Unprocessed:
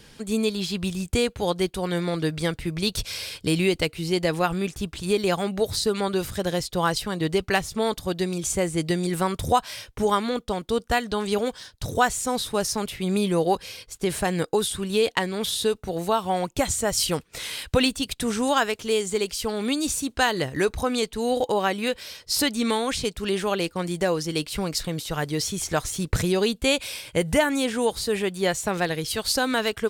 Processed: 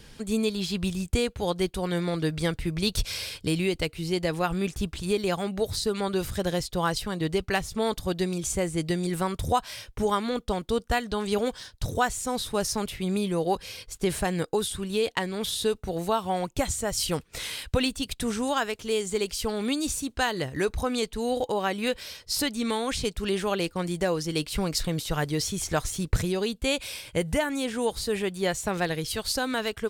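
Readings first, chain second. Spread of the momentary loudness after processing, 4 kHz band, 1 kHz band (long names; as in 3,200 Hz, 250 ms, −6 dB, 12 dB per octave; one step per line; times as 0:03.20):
3 LU, −3.5 dB, −3.5 dB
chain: low-shelf EQ 77 Hz +8.5 dB
speech leveller within 4 dB 0.5 s
level −3.5 dB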